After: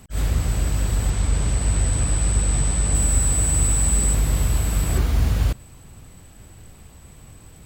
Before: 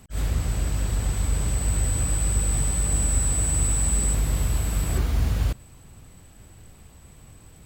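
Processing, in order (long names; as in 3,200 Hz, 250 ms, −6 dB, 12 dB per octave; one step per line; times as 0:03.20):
0:01.10–0:02.95: low-pass filter 8,700 Hz 12 dB per octave
level +3.5 dB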